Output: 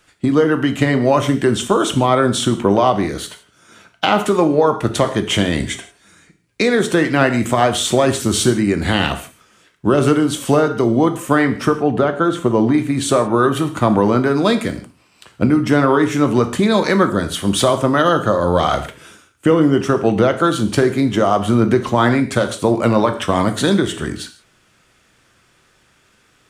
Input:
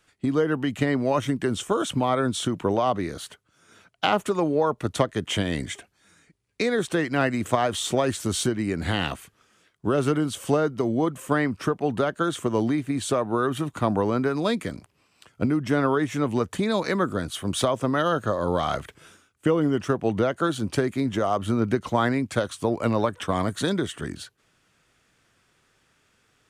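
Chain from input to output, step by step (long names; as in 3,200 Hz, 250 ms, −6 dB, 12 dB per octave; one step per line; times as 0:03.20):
0:11.78–0:12.74: high-shelf EQ 2,800 Hz −11 dB
reverb whose tail is shaped and stops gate 190 ms falling, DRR 7 dB
boost into a limiter +9.5 dB
level −1 dB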